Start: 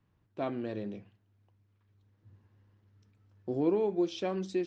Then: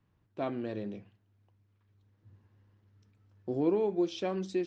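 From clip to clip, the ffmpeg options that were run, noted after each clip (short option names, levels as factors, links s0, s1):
-af anull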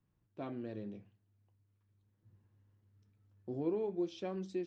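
-af "flanger=delay=5.4:depth=4:regen=-70:speed=0.46:shape=sinusoidal,lowshelf=f=370:g=5,volume=0.531"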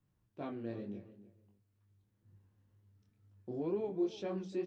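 -filter_complex "[0:a]flanger=delay=19.5:depth=6.7:speed=2.1,asplit=2[s0][s1];[s1]adelay=300,lowpass=f=2000:p=1,volume=0.178,asplit=2[s2][s3];[s3]adelay=300,lowpass=f=2000:p=1,volume=0.21[s4];[s0][s2][s4]amix=inputs=3:normalize=0,volume=1.5"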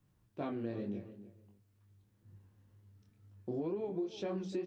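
-af "acompressor=threshold=0.0112:ratio=12,volume=1.88"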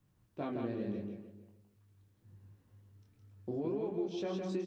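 -af "aecho=1:1:163:0.631"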